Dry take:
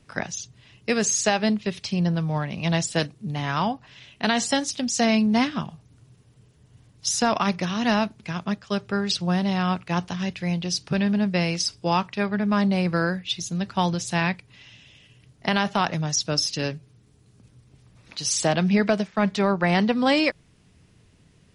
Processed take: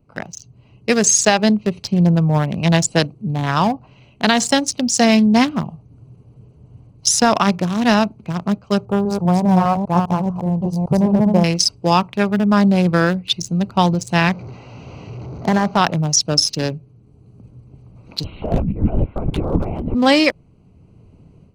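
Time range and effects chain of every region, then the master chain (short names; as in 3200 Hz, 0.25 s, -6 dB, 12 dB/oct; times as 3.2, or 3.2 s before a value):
8.85–11.44 reverse delay 0.201 s, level -3 dB + EQ curve 140 Hz 0 dB, 280 Hz -4 dB, 970 Hz +5 dB, 1500 Hz -9 dB, 2300 Hz -23 dB, 9500 Hz -2 dB
14.29–15.77 delta modulation 32 kbps, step -33.5 dBFS + HPF 55 Hz + bell 3000 Hz -7 dB 0.46 oct
18.24–19.95 high shelf 2100 Hz -4.5 dB + negative-ratio compressor -26 dBFS, ratio -0.5 + LPC vocoder at 8 kHz whisper
whole clip: Wiener smoothing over 25 samples; high shelf 9000 Hz +10.5 dB; AGC gain up to 11.5 dB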